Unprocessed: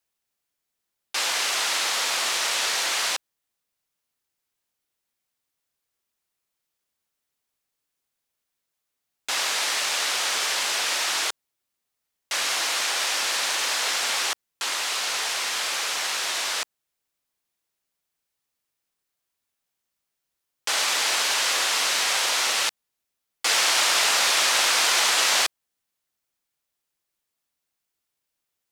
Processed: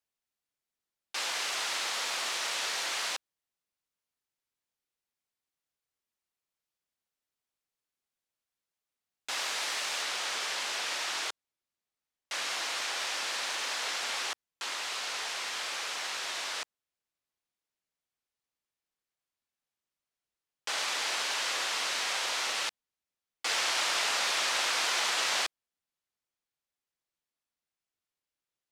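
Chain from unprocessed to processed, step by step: treble shelf 10 kHz -7 dB, from 10.02 s -12 dB; trim -7.5 dB

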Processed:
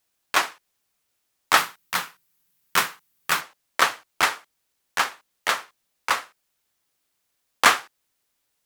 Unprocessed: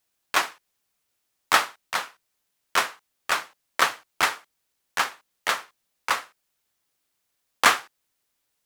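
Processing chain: 1.57–3.41 s: fifteen-band graphic EQ 160 Hz +11 dB, 630 Hz -6 dB, 16 kHz +11 dB; trim +1.5 dB

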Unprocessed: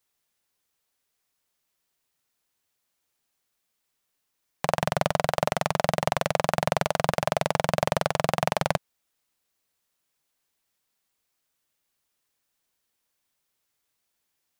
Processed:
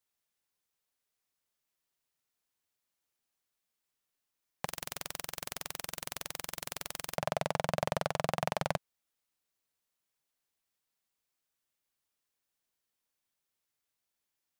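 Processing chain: 4.65–7.16 s: spectrum-flattening compressor 4:1; trim -8 dB

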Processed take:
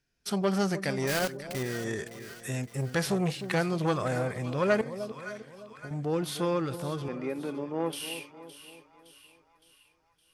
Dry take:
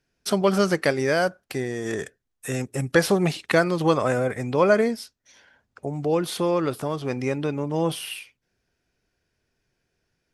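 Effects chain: 1.07–1.65 s: block-companded coder 3-bit; 7.08–7.93 s: three-band isolator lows -24 dB, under 210 Hz, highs -21 dB, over 2.4 kHz; harmonic-percussive split percussive -7 dB; peaking EQ 490 Hz -5 dB 2.9 oct; 4.81–5.91 s: compression, threshold -41 dBFS, peak gain reduction 16.5 dB; two-band feedback delay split 960 Hz, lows 305 ms, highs 564 ms, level -13 dB; transformer saturation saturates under 820 Hz

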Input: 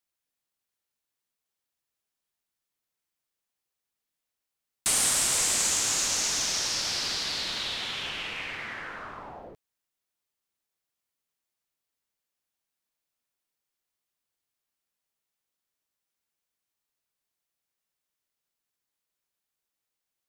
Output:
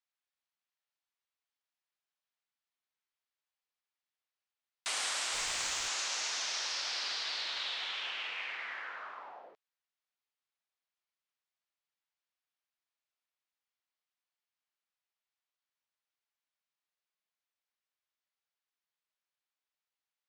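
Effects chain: band-pass 700–4500 Hz; 5.32–5.87 s: added noise pink -52 dBFS; trim -3.5 dB

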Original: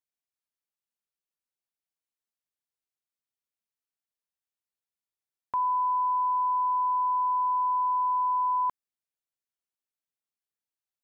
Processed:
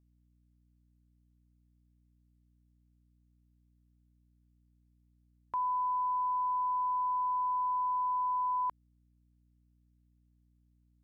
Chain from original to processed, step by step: hum 60 Hz, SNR 32 dB; trim -5.5 dB

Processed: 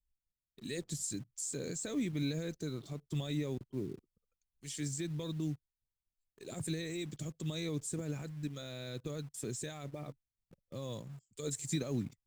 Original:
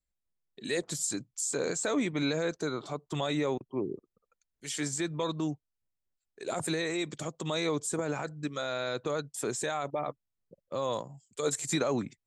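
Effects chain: amplifier tone stack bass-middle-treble 10-0-1; band-stop 1.4 kHz, Q 19; in parallel at -6 dB: companded quantiser 6-bit; on the sum: trim +10.5 dB

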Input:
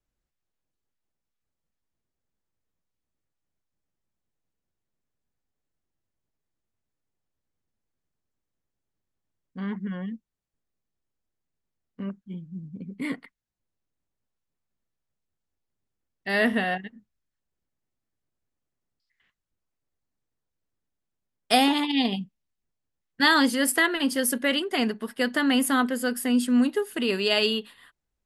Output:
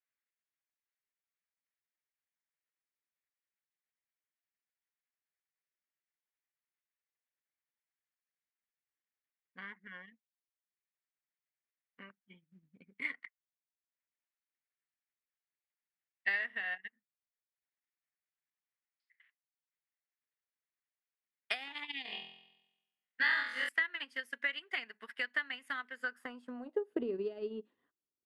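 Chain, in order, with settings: compression 10:1, threshold -28 dBFS, peak gain reduction 13.5 dB; band-pass sweep 2 kHz -> 340 Hz, 25.92–27.11 s; 22.03–23.69 s: flutter echo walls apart 4 m, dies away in 1 s; transient shaper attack +5 dB, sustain -8 dB

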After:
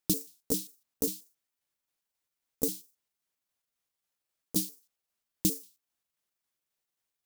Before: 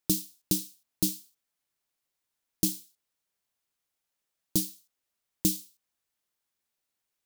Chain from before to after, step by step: pitch shift switched off and on +6.5 st, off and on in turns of 134 ms; trim -1.5 dB

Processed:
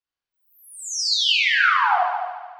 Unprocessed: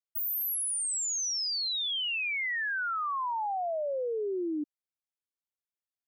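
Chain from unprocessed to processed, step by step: low-pass 2.3 kHz 24 dB/octave; on a send: multi-head delay 171 ms, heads first and third, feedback 46%, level -8 dB; on the sum: algorithmic reverb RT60 0.75 s, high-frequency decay 0.3×, pre-delay 55 ms, DRR -3 dB; speed mistake 33 rpm record played at 78 rpm; trim +6.5 dB

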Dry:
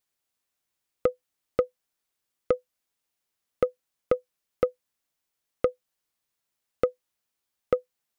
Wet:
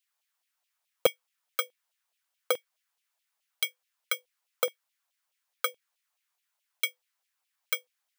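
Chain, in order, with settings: bit-reversed sample order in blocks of 16 samples; LFO high-pass saw down 4.7 Hz 610–3000 Hz

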